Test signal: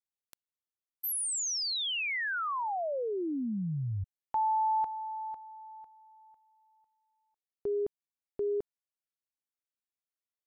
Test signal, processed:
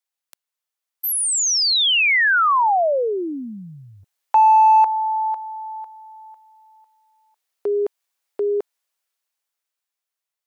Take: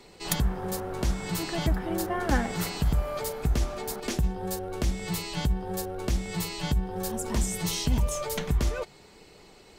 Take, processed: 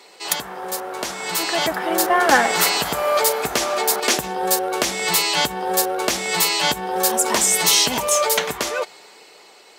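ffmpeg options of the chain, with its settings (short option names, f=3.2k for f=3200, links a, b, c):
-filter_complex "[0:a]highpass=560,dynaudnorm=f=230:g=13:m=9dB,asplit=2[a][b];[b]asoftclip=type=hard:threshold=-20dB,volume=-11dB[c];[a][c]amix=inputs=2:normalize=0,volume=6dB"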